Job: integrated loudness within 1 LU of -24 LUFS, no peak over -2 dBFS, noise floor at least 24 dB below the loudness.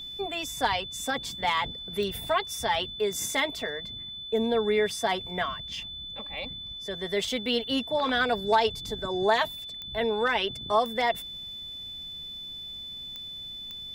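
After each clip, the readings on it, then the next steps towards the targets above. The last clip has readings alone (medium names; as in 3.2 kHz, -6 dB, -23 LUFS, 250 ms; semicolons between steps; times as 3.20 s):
clicks found 6; steady tone 3.5 kHz; tone level -37 dBFS; loudness -29.0 LUFS; peak level -11.0 dBFS; loudness target -24.0 LUFS
-> de-click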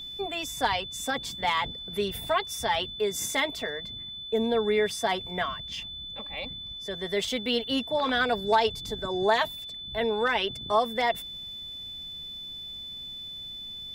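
clicks found 0; steady tone 3.5 kHz; tone level -37 dBFS
-> band-stop 3.5 kHz, Q 30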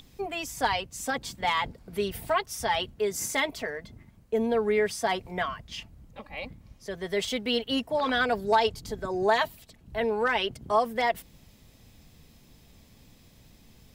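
steady tone not found; loudness -28.5 LUFS; peak level -11.5 dBFS; loudness target -24.0 LUFS
-> trim +4.5 dB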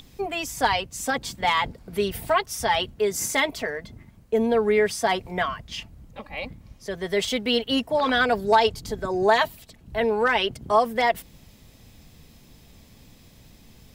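loudness -24.0 LUFS; peak level -7.0 dBFS; noise floor -53 dBFS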